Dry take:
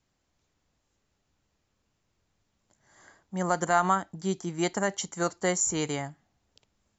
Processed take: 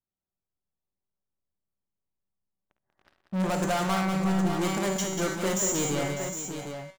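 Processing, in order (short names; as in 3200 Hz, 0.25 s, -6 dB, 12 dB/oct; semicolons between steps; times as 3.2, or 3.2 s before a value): Wiener smoothing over 15 samples; low-pass opened by the level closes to 1700 Hz, open at -26 dBFS; resonator 190 Hz, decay 0.6 s, harmonics all, mix 80%; in parallel at -3 dB: level quantiser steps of 20 dB; on the sum: hard clip -25 dBFS, distortion -16 dB; sample leveller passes 5; on a send: tapped delay 54/69/189/602/760 ms -11.5/-15.5/-6/-12/-8 dB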